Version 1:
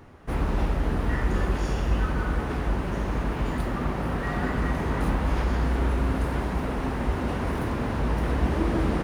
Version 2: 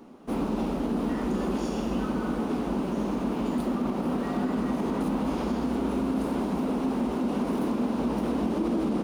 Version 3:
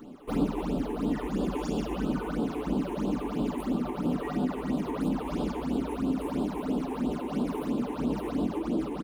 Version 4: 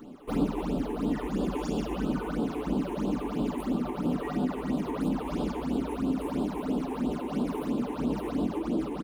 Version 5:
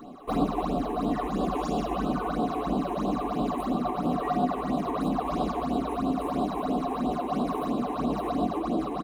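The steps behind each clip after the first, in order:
resonant low shelf 150 Hz -13.5 dB, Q 3; limiter -18.5 dBFS, peak gain reduction 6.5 dB; bell 1800 Hz -11 dB 0.73 oct
comb 6.8 ms, depth 31%; vocal rider 0.5 s; phaser stages 8, 3 Hz, lowest notch 170–2000 Hz
nothing audible
small resonant body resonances 720/1100/3900 Hz, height 15 dB, ringing for 35 ms

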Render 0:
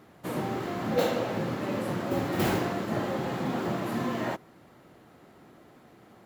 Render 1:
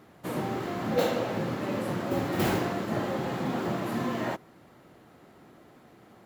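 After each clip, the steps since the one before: nothing audible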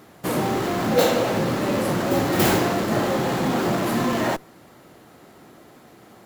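tone controls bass -2 dB, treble +6 dB; in parallel at -8 dB: Schmitt trigger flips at -40 dBFS; on the sum: gain +6.5 dB

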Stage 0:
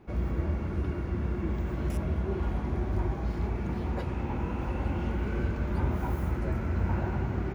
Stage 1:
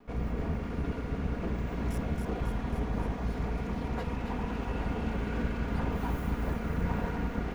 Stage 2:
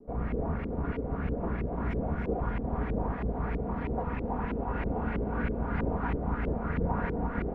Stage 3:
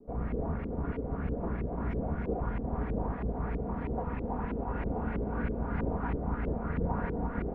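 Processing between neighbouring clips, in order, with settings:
minimum comb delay 4.2 ms; thin delay 0.273 s, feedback 69%, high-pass 1700 Hz, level -5 dB
LFO low-pass saw up 3.1 Hz 380–2400 Hz
high shelf 2400 Hz -8.5 dB; gain -1.5 dB

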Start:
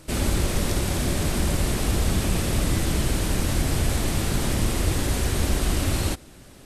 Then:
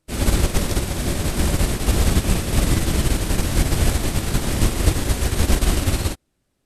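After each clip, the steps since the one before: upward expander 2.5:1, over -40 dBFS; gain +8.5 dB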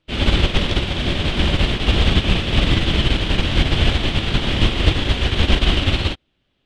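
synth low-pass 3200 Hz, resonance Q 3.9; gain +1.5 dB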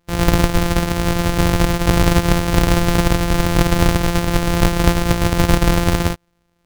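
sample sorter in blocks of 256 samples; in parallel at -3 dB: soft clip -18 dBFS, distortion -8 dB; on the sum: gain -1 dB

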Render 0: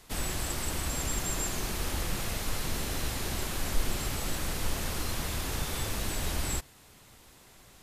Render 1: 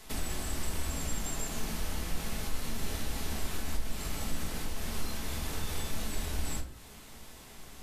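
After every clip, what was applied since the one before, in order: de-hum 53.22 Hz, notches 31; compressor 3:1, threshold -41 dBFS, peak gain reduction 16 dB; shoebox room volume 270 m³, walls furnished, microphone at 1.5 m; gain +2.5 dB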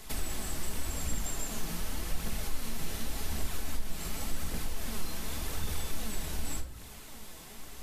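high shelf 9700 Hz +5 dB; in parallel at -1 dB: compressor, threshold -37 dBFS, peak gain reduction 14.5 dB; on the sum: flange 0.88 Hz, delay 0 ms, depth 6.5 ms, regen +56%

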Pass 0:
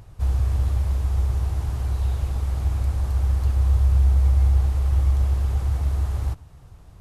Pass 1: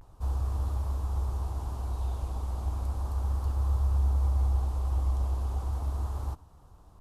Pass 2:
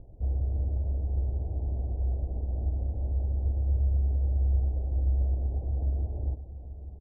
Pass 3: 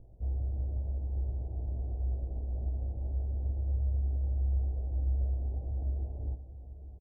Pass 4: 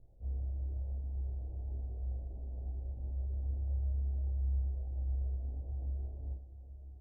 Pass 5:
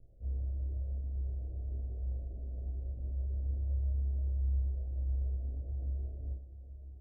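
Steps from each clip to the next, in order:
graphic EQ 125/250/1000/2000 Hz -7/+4/+9/-10 dB; vibrato 0.34 Hz 45 cents; gain -7 dB
steep low-pass 670 Hz 48 dB/oct; compressor 1.5:1, threshold -35 dBFS, peak gain reduction 5 dB; echo 0.83 s -13 dB; gain +4.5 dB
doubler 18 ms -5 dB; gain -6.5 dB
chorus voices 4, 0.34 Hz, delay 28 ms, depth 3 ms; gain -4.5 dB
steep low-pass 690 Hz 48 dB/oct; gain +1.5 dB

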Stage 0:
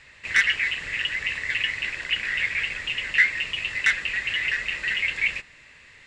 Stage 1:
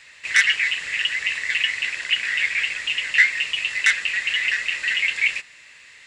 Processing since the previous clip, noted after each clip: tilt +3 dB/oct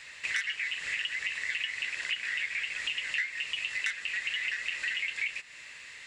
compressor 5:1, threshold -31 dBFS, peak gain reduction 18 dB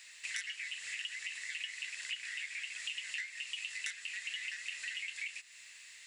pre-emphasis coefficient 0.9; gain +1 dB

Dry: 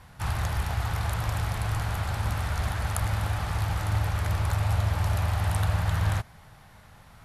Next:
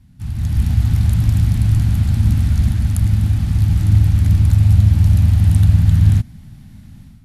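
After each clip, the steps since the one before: bell 1100 Hz -12.5 dB 1.7 oct; AGC gain up to 12 dB; resonant low shelf 340 Hz +10 dB, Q 3; gain -7.5 dB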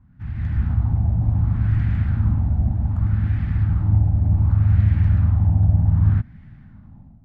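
LFO low-pass sine 0.66 Hz 730–1900 Hz; gain -5 dB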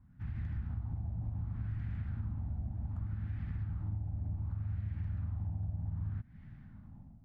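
compressor 6:1, threshold -27 dBFS, peak gain reduction 15 dB; gain -8 dB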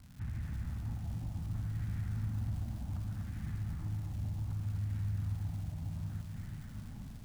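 limiter -38 dBFS, peak gain reduction 10 dB; crackle 320/s -54 dBFS; lo-fi delay 0.244 s, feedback 55%, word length 11-bit, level -5 dB; gain +5.5 dB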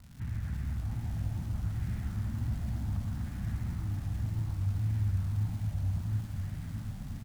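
echo 0.109 s -5.5 dB; wow and flutter 110 cents; echo 0.705 s -6 dB; gain +2.5 dB

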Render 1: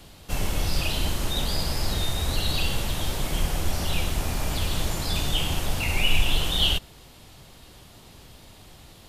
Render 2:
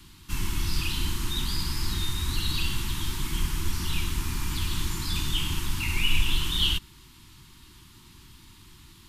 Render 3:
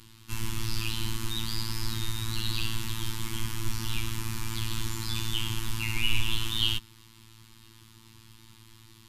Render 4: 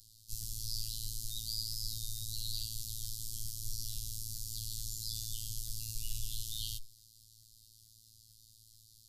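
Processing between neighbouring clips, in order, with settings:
elliptic band-stop 360–940 Hz, stop band 60 dB; gain -2 dB
robotiser 112 Hz
elliptic band-stop 520–4500 Hz, stop band 60 dB; passive tone stack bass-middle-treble 10-0-10

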